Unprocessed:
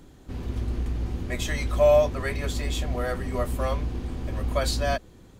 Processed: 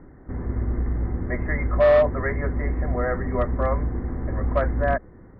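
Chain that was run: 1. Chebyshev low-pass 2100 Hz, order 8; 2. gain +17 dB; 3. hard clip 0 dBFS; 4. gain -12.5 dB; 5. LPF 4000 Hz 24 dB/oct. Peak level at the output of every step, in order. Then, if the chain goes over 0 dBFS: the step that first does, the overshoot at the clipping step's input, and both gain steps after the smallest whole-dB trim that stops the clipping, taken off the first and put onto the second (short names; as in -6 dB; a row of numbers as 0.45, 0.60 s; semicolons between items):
-8.5, +8.5, 0.0, -12.5, -12.0 dBFS; step 2, 8.5 dB; step 2 +8 dB, step 4 -3.5 dB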